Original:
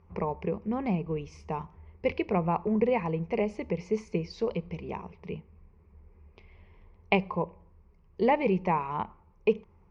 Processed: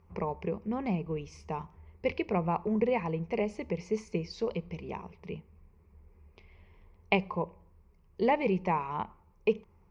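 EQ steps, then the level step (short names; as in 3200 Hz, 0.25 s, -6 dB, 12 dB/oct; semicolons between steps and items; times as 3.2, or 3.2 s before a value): high shelf 4900 Hz +7.5 dB; -2.5 dB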